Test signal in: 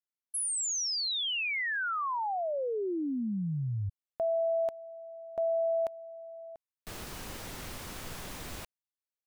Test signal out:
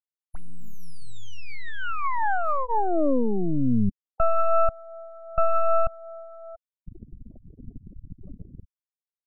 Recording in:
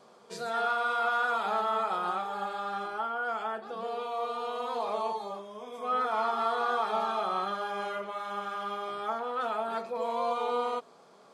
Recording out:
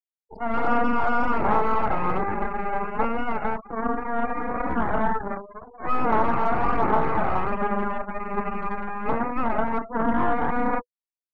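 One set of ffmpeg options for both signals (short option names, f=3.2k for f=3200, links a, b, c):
-filter_complex "[0:a]afftfilt=real='re*gte(hypot(re,im),0.0316)':imag='im*gte(hypot(re,im),0.0316)':win_size=1024:overlap=0.75,bandreject=f=490:w=13,aeval=exprs='0.141*(cos(1*acos(clip(val(0)/0.141,-1,1)))-cos(1*PI/2))+0.00501*(cos(4*acos(clip(val(0)/0.141,-1,1)))-cos(4*PI/2))+0.0631*(cos(8*acos(clip(val(0)/0.141,-1,1)))-cos(8*PI/2))':c=same,equalizer=f=250:t=o:w=1:g=5,equalizer=f=1k:t=o:w=1:g=7,equalizer=f=2k:t=o:w=1:g=-4,equalizer=f=4k:t=o:w=1:g=-10,equalizer=f=8k:t=o:w=1:g=-11,acrossover=split=300|2100[a][b][c];[c]acompressor=threshold=-52dB:ratio=6:attack=37:release=30:knee=1:detection=rms[d];[a][b][d]amix=inputs=3:normalize=0,aemphasis=mode=reproduction:type=50kf,aphaser=in_gain=1:out_gain=1:delay=1.4:decay=0.29:speed=1.3:type=sinusoidal,aresample=32000,aresample=44100"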